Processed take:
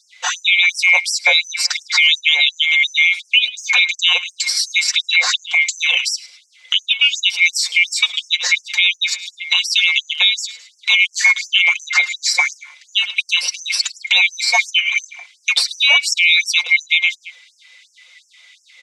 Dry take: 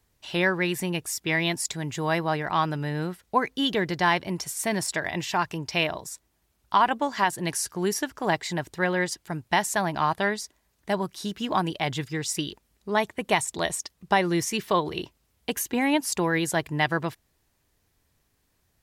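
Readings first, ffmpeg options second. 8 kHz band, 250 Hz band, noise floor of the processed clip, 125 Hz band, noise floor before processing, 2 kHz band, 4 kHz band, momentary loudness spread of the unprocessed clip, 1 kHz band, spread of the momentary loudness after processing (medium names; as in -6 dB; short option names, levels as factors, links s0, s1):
+10.0 dB, under -40 dB, -56 dBFS, under -40 dB, -71 dBFS, +15.5 dB, +19.5 dB, 8 LU, -6.0 dB, 7 LU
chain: -filter_complex "[0:a]afftfilt=real='real(if(lt(b,920),b+92*(1-2*mod(floor(b/92),2)),b),0)':imag='imag(if(lt(b,920),b+92*(1-2*mod(floor(b/92),2)),b),0)':win_size=2048:overlap=0.75,highpass=f=200:w=0.5412,highpass=f=200:w=1.3066,equalizer=f=270:t=q:w=4:g=-10,equalizer=f=480:t=q:w=4:g=10,equalizer=f=3500:t=q:w=4:g=5,lowpass=f=7900:w=0.5412,lowpass=f=7900:w=1.3066,acrossover=split=650|930[s0][s1][s2];[s1]aeval=exprs='sgn(val(0))*max(abs(val(0))-0.00211,0)':c=same[s3];[s0][s3][s2]amix=inputs=3:normalize=0,aecho=1:1:5.6:0.84,asplit=2[s4][s5];[s5]aecho=0:1:106|212:0.0794|0.0278[s6];[s4][s6]amix=inputs=2:normalize=0,crystalizer=i=5:c=0,acompressor=threshold=0.0631:ratio=6,acrossover=split=320 4900:gain=0.178 1 0.112[s7][s8][s9];[s7][s8][s9]amix=inputs=3:normalize=0,alimiter=level_in=8.91:limit=0.891:release=50:level=0:latency=1,afftfilt=real='re*gte(b*sr/1024,450*pow(5300/450,0.5+0.5*sin(2*PI*2.8*pts/sr)))':imag='im*gte(b*sr/1024,450*pow(5300/450,0.5+0.5*sin(2*PI*2.8*pts/sr)))':win_size=1024:overlap=0.75,volume=0.794"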